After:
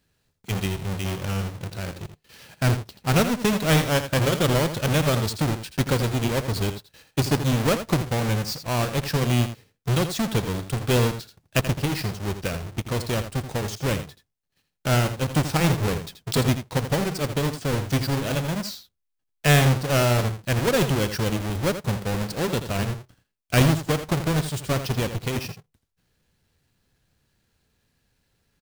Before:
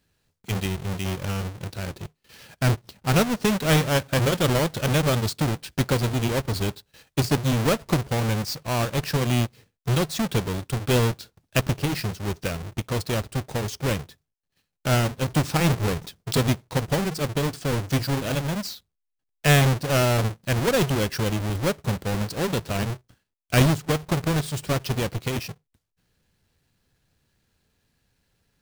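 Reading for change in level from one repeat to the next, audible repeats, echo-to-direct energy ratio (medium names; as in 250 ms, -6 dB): no regular repeats, 1, -10.5 dB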